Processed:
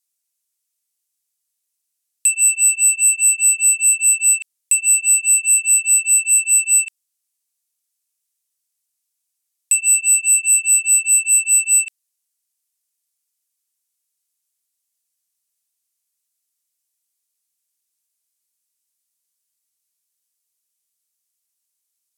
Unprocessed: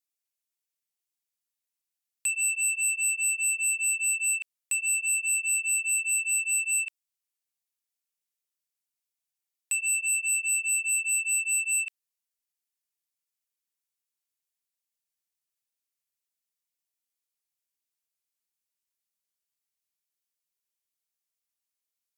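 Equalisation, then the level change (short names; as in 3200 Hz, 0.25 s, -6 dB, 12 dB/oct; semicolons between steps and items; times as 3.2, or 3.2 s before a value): bell 9400 Hz +14.5 dB 2.2 oct; 0.0 dB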